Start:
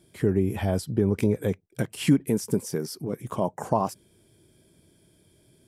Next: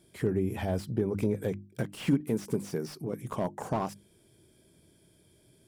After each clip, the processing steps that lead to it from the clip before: hum notches 50/100/150/200/250/300/350 Hz; in parallel at -2.5 dB: compression, threshold -30 dBFS, peak gain reduction 14.5 dB; on the sum: slew-rate limiter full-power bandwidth 76 Hz; trim -6.5 dB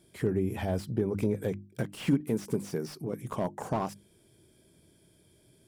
no audible change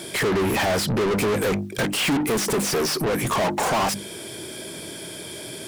overdrive pedal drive 40 dB, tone 6.4 kHz, clips at -15 dBFS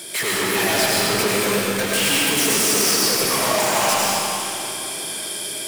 tilt EQ +2.5 dB/octave; algorithmic reverb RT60 3 s, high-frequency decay 0.95×, pre-delay 55 ms, DRR -6 dB; trim -3.5 dB

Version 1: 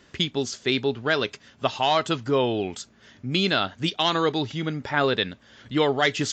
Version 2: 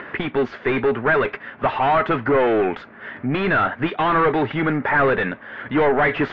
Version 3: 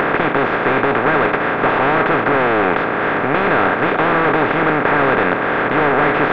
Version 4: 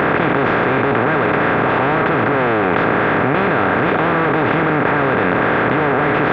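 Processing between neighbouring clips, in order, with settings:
upward compressor, threshold -45 dBFS; overdrive pedal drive 29 dB, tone 1.2 kHz, clips at -7 dBFS; four-pole ladder low-pass 2.4 kHz, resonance 35%; trim +5.5 dB
spectral levelling over time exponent 0.2; trim -5.5 dB
high-pass 74 Hz; bass shelf 160 Hz +11 dB; level flattener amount 100%; trim -4 dB

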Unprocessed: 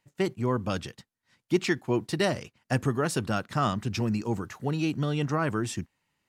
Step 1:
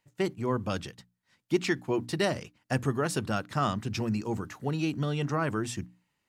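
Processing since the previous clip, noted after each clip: hum notches 60/120/180/240/300 Hz; trim -1.5 dB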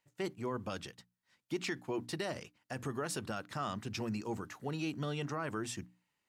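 bass shelf 230 Hz -7 dB; peak limiter -22.5 dBFS, peak gain reduction 8.5 dB; trim -4 dB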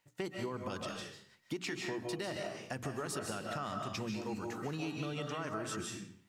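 on a send at -2 dB: reverberation RT60 0.55 s, pre-delay 110 ms; on the sum: compression 4:1, threshold -41 dBFS, peak gain reduction 9.5 dB; trim +4.5 dB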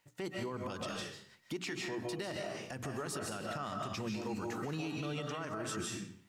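peak limiter -33 dBFS, peak gain reduction 9 dB; trim +3 dB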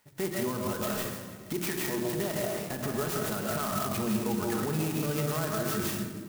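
simulated room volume 3200 m³, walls mixed, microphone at 1.4 m; sampling jitter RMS 0.078 ms; trim +6.5 dB

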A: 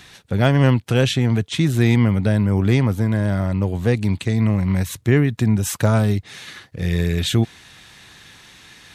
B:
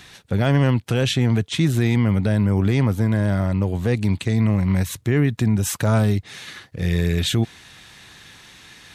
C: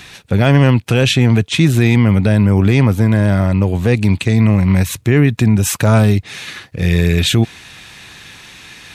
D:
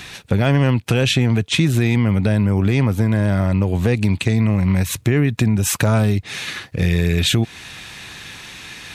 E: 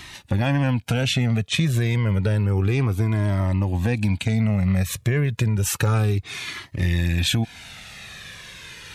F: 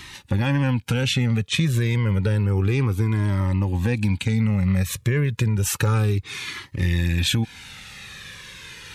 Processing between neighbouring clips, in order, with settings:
peak limiter -9.5 dBFS, peak gain reduction 5.5 dB
peaking EQ 2.5 kHz +6 dB 0.21 oct; trim +7 dB
compression 3:1, threshold -16 dBFS, peak gain reduction 7.5 dB; trim +1.5 dB
Shepard-style flanger falling 0.3 Hz
Butterworth band-stop 670 Hz, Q 3.8

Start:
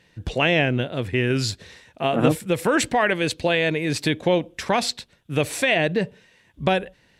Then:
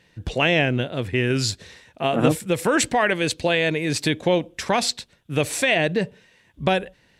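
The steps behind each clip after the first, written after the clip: dynamic bell 7.3 kHz, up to +4 dB, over -43 dBFS, Q 0.91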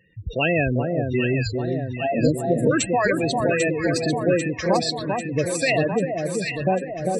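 spectral gate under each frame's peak -10 dB strong; echo whose repeats swap between lows and highs 397 ms, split 1.3 kHz, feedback 77%, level -3.5 dB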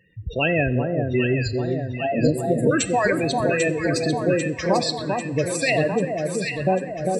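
two-slope reverb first 0.86 s, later 2.4 s, from -17 dB, DRR 13 dB

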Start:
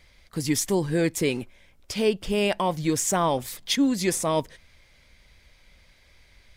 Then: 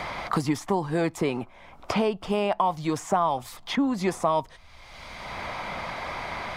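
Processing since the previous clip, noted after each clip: low-pass 3.1 kHz 6 dB/octave; high-order bell 930 Hz +11.5 dB 1.2 oct; three bands compressed up and down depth 100%; trim -3.5 dB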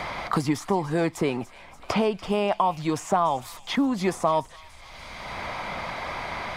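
feedback echo behind a high-pass 290 ms, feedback 65%, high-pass 1.8 kHz, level -15.5 dB; trim +1 dB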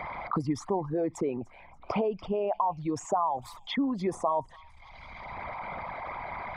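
resonances exaggerated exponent 2; trim -5 dB

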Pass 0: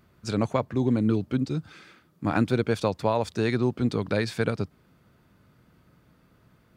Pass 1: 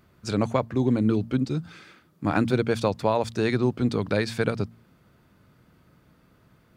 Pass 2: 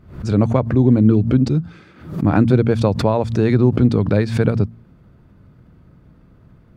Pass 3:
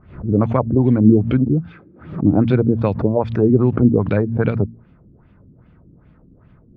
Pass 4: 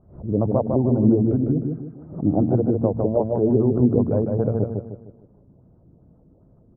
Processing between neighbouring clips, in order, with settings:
de-hum 57.19 Hz, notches 4; trim +1.5 dB
tilt EQ -3 dB/octave; swell ahead of each attack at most 110 dB/s; trim +2.5 dB
LFO low-pass sine 2.5 Hz 280–3000 Hz; trim -2 dB
four-pole ladder low-pass 830 Hz, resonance 40%; on a send: feedback delay 153 ms, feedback 39%, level -4 dB; on the sum: trim +1.5 dB

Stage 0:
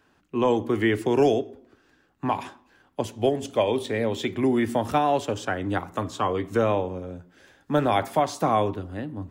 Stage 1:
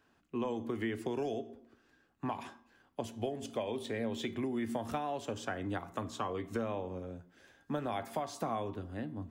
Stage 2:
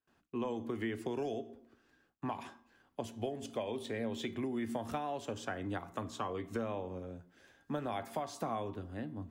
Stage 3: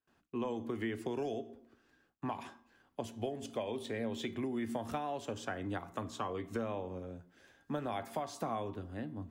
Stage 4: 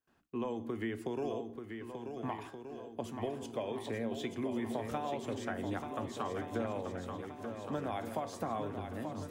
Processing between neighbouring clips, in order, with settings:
compression 6:1, threshold -25 dBFS, peak gain reduction 10 dB; feedback comb 230 Hz, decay 0.34 s, harmonics odd, mix 60%
gate with hold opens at -60 dBFS; trim -1.5 dB
no audible change
peaking EQ 4.7 kHz -2.5 dB 1.8 oct; shuffle delay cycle 1474 ms, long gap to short 1.5:1, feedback 48%, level -7 dB

